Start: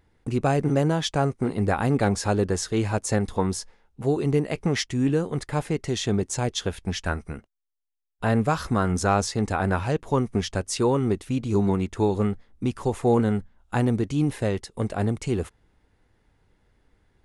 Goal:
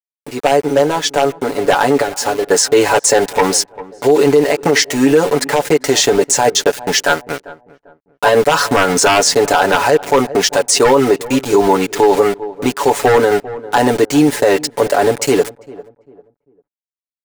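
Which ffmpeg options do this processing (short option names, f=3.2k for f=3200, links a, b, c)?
-filter_complex "[0:a]highpass=470,equalizer=f=500:t=q:w=4:g=4,equalizer=f=990:t=q:w=4:g=5,equalizer=f=2.4k:t=q:w=4:g=-3,equalizer=f=3.4k:t=q:w=4:g=-6,lowpass=f=9.7k:w=0.5412,lowpass=f=9.7k:w=1.3066,asettb=1/sr,asplit=3[a][b][c];[a]atrim=end=2.004[d];[b]atrim=start=2:end=2.51,asetpts=PTS-STARTPTS,afade=t=in:d=0.004:c=qsin,afade=t=out:st=0.506:d=0.004:c=qsin,acompressor=threshold=-31dB:ratio=16[e];[c]atrim=start=2.506[f];[d][e]acrossfade=d=0.004:c1=hsin:c2=qsin[g];[g][f]acrossfade=d=0.004:c1=qsin:c2=hsin,aeval=exprs='val(0)*gte(abs(val(0)),0.01)':c=same,equalizer=f=1.1k:w=4.8:g=-7.5,aeval=exprs='0.133*(abs(mod(val(0)/0.133+3,4)-2)-1)':c=same,aecho=1:1:7:0.77,asplit=2[h][i];[i]adelay=396,lowpass=f=960:p=1,volume=-20dB,asplit=2[j][k];[k]adelay=396,lowpass=f=960:p=1,volume=0.34,asplit=2[l][m];[m]adelay=396,lowpass=f=960:p=1,volume=0.34[n];[h][j][l][n]amix=inputs=4:normalize=0,dynaudnorm=f=560:g=7:m=9.5dB,alimiter=level_in=11.5dB:limit=-1dB:release=50:level=0:latency=1,volume=-1dB"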